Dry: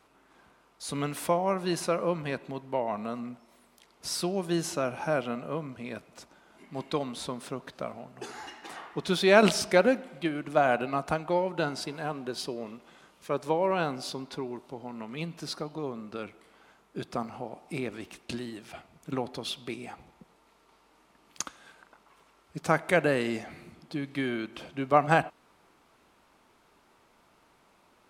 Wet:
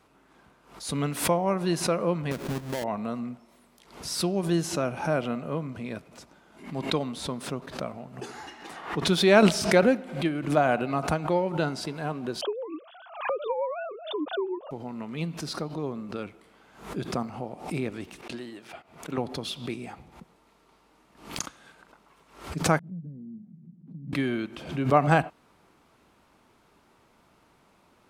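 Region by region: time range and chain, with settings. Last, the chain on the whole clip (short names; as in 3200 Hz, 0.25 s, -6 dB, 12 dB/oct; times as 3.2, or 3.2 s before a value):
2.31–2.84 half-waves squared off + compressor 4:1, threshold -30 dBFS
12.41–14.71 sine-wave speech + bell 2000 Hz -14.5 dB 0.65 oct + three-band squash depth 100%
18.21–19.18 gate -51 dBFS, range -9 dB + tone controls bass -13 dB, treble -5 dB
22.79–24.13 switching spikes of -17 dBFS + Butterworth band-pass 180 Hz, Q 3.3 + compressor 2.5:1, threshold -43 dBFS
whole clip: bell 110 Hz +6 dB 2.9 oct; backwards sustainer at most 110 dB/s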